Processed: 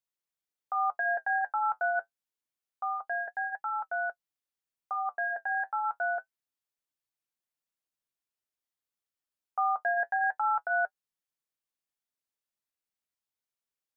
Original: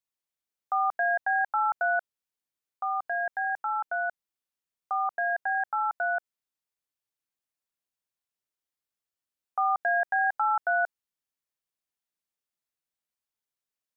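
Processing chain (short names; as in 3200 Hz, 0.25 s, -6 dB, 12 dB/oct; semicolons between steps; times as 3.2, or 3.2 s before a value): flange 0.27 Hz, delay 5.3 ms, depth 4.7 ms, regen -53%; gain +1 dB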